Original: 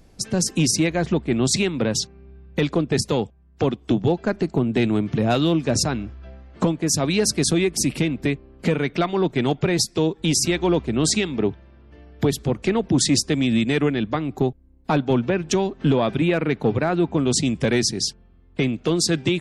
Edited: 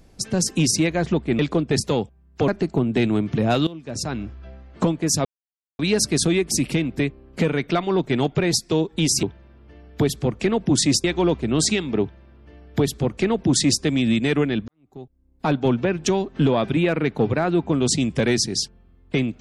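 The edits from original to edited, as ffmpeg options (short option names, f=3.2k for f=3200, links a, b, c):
-filter_complex "[0:a]asplit=8[a][b][c][d][e][f][g][h];[a]atrim=end=1.392[i];[b]atrim=start=2.598:end=3.692[j];[c]atrim=start=4.278:end=5.47,asetpts=PTS-STARTPTS,afade=t=out:st=1.188:d=0.004:c=hsin:silence=0.133352[k];[d]atrim=start=5.47:end=7.05,asetpts=PTS-STARTPTS,afade=t=in:d=0.56:c=qua:silence=0.133352,afade=t=out:st=1.576:d=0.004:c=hsin,apad=pad_dur=0.54[l];[e]atrim=start=7.05:end=10.492,asetpts=PTS-STARTPTS,afade=t=in:d=0.004:c=hsin[m];[f]atrim=start=11.458:end=13.272[n];[g]atrim=start=10.488:end=14.13,asetpts=PTS-STARTPTS,afade=t=out:st=3.638:d=0.004:c=hsin[o];[h]atrim=start=14.13,asetpts=PTS-STARTPTS,afade=t=in:d=0.86:c=qua[p];[i][j]acrossfade=d=0.004:c1=hsin:c2=hsin[q];[k][l][m]concat=n=3:v=0:a=1[r];[q][r]acrossfade=d=0.004:c1=hsin:c2=hsin[s];[s][n]acrossfade=d=0.004:c1=hsin:c2=hsin[t];[o][p]concat=n=2:v=0:a=1[u];[t][u]acrossfade=d=0.004:c1=hsin:c2=hsin"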